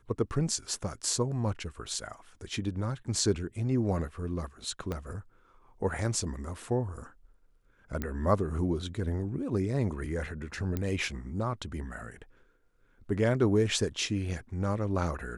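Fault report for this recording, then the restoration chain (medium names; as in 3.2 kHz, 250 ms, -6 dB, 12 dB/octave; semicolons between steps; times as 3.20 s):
4.92 s: pop -21 dBFS
8.02 s: pop -19 dBFS
10.77 s: pop -19 dBFS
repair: de-click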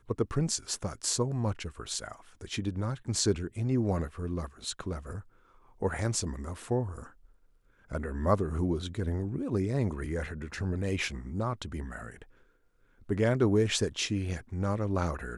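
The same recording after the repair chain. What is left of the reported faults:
4.92 s: pop
8.02 s: pop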